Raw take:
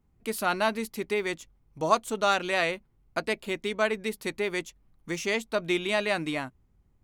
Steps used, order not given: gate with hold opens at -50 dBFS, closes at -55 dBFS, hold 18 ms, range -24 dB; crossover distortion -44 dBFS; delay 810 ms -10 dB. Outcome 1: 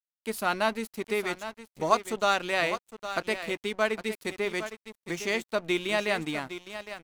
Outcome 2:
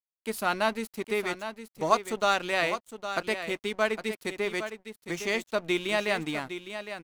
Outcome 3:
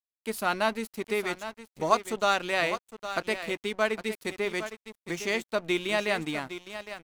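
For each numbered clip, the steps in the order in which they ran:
delay > gate with hold > crossover distortion; crossover distortion > delay > gate with hold; delay > crossover distortion > gate with hold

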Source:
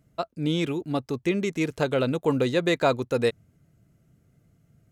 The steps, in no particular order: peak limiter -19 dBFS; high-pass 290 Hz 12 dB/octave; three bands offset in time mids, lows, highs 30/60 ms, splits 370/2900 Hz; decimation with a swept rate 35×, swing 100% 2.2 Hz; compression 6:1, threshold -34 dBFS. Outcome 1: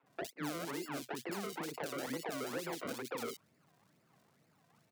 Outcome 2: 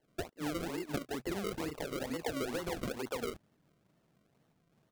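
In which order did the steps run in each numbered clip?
decimation with a swept rate > high-pass > peak limiter > compression > three bands offset in time; high-pass > peak limiter > three bands offset in time > compression > decimation with a swept rate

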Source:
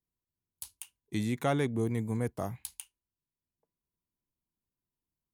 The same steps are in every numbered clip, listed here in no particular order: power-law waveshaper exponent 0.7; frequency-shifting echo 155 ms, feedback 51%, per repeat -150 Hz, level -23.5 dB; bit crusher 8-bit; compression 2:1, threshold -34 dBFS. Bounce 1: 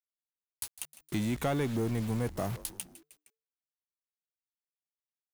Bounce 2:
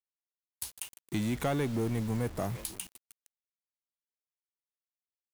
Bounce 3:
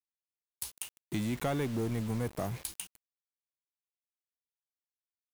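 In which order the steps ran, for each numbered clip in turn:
bit crusher > compression > frequency-shifting echo > power-law waveshaper; frequency-shifting echo > compression > power-law waveshaper > bit crusher; power-law waveshaper > compression > frequency-shifting echo > bit crusher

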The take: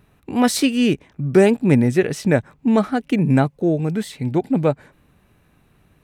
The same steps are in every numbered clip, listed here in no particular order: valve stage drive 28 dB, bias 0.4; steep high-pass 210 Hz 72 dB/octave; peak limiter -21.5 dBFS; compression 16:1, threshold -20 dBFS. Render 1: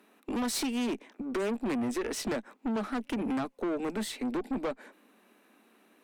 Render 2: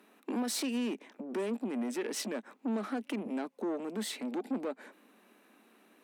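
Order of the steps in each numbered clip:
steep high-pass > compression > valve stage > peak limiter; compression > peak limiter > valve stage > steep high-pass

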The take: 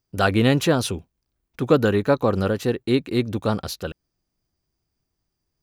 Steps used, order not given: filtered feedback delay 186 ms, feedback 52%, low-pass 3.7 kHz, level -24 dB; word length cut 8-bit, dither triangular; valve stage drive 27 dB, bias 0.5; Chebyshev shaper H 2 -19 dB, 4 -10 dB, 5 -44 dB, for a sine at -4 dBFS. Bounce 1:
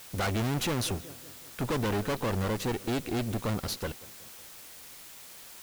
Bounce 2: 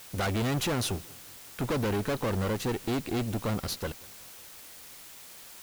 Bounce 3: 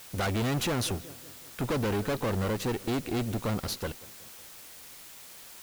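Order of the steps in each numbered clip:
filtered feedback delay > Chebyshev shaper > valve stage > word length cut; valve stage > Chebyshev shaper > word length cut > filtered feedback delay; filtered feedback delay > valve stage > Chebyshev shaper > word length cut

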